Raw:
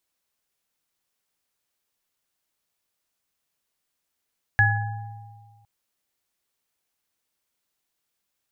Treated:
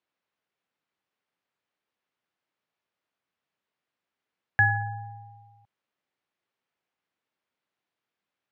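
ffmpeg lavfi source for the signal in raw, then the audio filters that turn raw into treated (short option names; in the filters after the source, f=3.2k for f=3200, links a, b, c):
-f lavfi -i "aevalsrc='0.126*pow(10,-3*t/1.66)*sin(2*PI*108*t)+0.0631*pow(10,-3*t/1.73)*sin(2*PI*807*t)+0.211*pow(10,-3*t/0.61)*sin(2*PI*1690*t)':d=1.06:s=44100"
-af "highpass=120,lowpass=2.7k"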